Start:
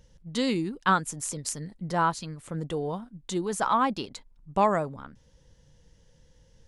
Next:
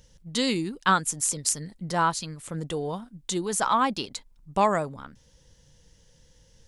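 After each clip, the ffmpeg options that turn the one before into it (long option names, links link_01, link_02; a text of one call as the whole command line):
ffmpeg -i in.wav -af "highshelf=frequency=2700:gain=8.5" out.wav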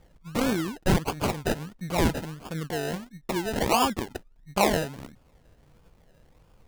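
ffmpeg -i in.wav -af "acrusher=samples=31:mix=1:aa=0.000001:lfo=1:lforange=18.6:lforate=1.5" out.wav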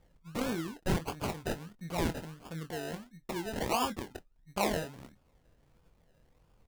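ffmpeg -i in.wav -filter_complex "[0:a]asplit=2[link_01][link_02];[link_02]adelay=24,volume=-10dB[link_03];[link_01][link_03]amix=inputs=2:normalize=0,volume=-8.5dB" out.wav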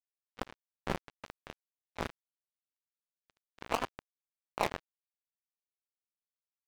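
ffmpeg -i in.wav -filter_complex "[0:a]asplit=2[link_01][link_02];[link_02]highpass=frequency=720:poles=1,volume=6dB,asoftclip=type=tanh:threshold=-18dB[link_03];[link_01][link_03]amix=inputs=2:normalize=0,lowpass=frequency=2100:poles=1,volume=-6dB,acrusher=bits=3:mix=0:aa=0.5,volume=2.5dB" out.wav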